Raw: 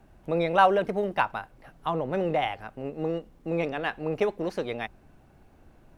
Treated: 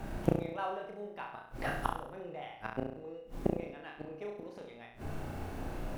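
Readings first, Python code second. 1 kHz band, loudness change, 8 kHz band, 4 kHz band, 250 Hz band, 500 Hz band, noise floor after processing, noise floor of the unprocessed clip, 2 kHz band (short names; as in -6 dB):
-13.0 dB, -11.5 dB, n/a, -13.0 dB, -6.5 dB, -12.0 dB, -52 dBFS, -57 dBFS, -11.5 dB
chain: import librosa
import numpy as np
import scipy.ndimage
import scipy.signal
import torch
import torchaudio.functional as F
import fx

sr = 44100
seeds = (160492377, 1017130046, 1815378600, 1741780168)

y = fx.hum_notches(x, sr, base_hz=60, count=4)
y = fx.gate_flip(y, sr, shuts_db=-27.0, range_db=-34)
y = fx.room_flutter(y, sr, wall_m=5.8, rt60_s=0.64)
y = F.gain(torch.from_numpy(y), 14.0).numpy()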